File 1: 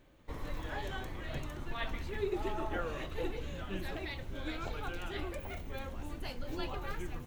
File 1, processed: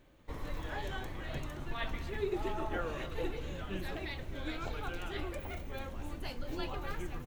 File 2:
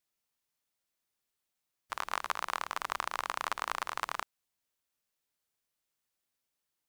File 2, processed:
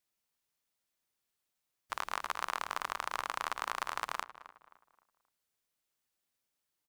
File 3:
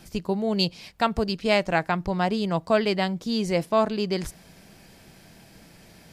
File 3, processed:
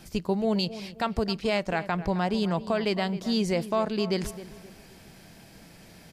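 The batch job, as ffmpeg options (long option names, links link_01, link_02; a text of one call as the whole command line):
ffmpeg -i in.wav -filter_complex "[0:a]alimiter=limit=-15.5dB:level=0:latency=1:release=147,asplit=2[link_01][link_02];[link_02]adelay=264,lowpass=frequency=2300:poles=1,volume=-14dB,asplit=2[link_03][link_04];[link_04]adelay=264,lowpass=frequency=2300:poles=1,volume=0.38,asplit=2[link_05][link_06];[link_06]adelay=264,lowpass=frequency=2300:poles=1,volume=0.38,asplit=2[link_07][link_08];[link_08]adelay=264,lowpass=frequency=2300:poles=1,volume=0.38[link_09];[link_01][link_03][link_05][link_07][link_09]amix=inputs=5:normalize=0" out.wav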